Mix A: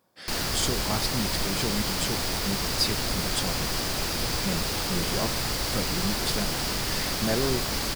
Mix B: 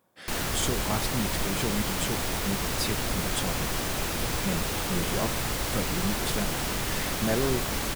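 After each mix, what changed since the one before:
master: add peaking EQ 4.8 kHz -9.5 dB 0.42 oct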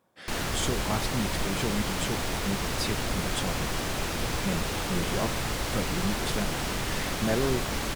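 master: add treble shelf 11 kHz -10.5 dB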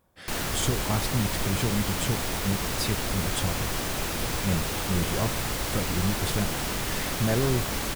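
speech: remove high-pass 170 Hz 12 dB/octave; master: add treble shelf 11 kHz +10.5 dB

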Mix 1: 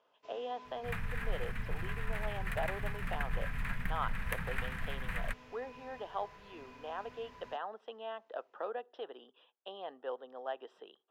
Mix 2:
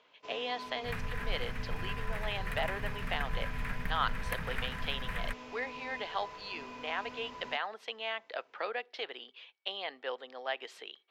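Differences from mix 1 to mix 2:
speech: remove boxcar filter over 20 samples; first sound +9.0 dB

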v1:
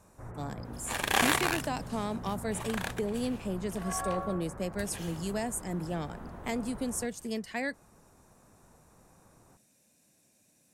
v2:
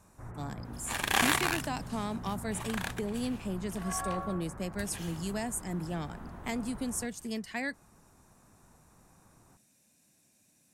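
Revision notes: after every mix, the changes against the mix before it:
master: add peaking EQ 510 Hz -5.5 dB 0.84 oct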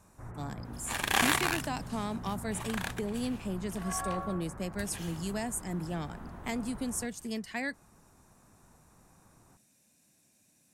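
no change

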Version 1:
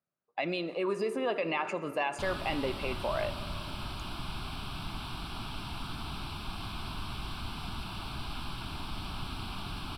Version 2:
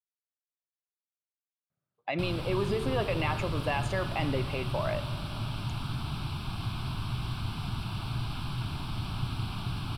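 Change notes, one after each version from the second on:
speech: entry +1.70 s; master: add peaking EQ 120 Hz +14 dB 0.83 oct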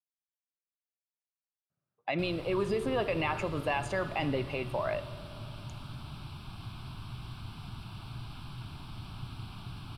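background -9.0 dB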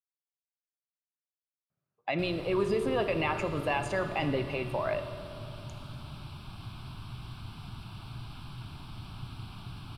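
speech: send +6.0 dB

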